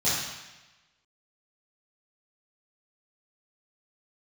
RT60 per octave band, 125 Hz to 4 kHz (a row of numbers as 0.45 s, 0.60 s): 1.1 s, 1.0 s, 1.1 s, 1.1 s, 1.2 s, 1.1 s